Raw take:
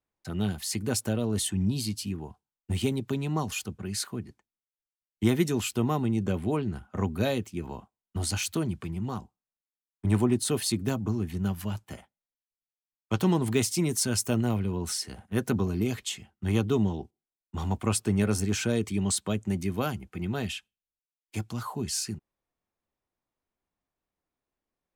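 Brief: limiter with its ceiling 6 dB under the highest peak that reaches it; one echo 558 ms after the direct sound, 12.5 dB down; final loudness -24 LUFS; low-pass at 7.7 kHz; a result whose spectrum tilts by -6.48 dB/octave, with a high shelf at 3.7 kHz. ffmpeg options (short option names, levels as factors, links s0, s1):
-af "lowpass=7700,highshelf=f=3700:g=-6,alimiter=limit=0.126:level=0:latency=1,aecho=1:1:558:0.237,volume=2.24"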